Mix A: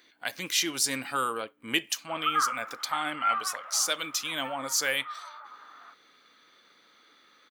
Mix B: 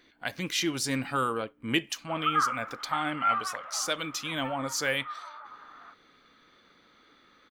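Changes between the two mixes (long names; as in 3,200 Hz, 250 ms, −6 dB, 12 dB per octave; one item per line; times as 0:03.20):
speech: add high-shelf EQ 5,400 Hz −9.5 dB
master: remove high-pass filter 450 Hz 6 dB per octave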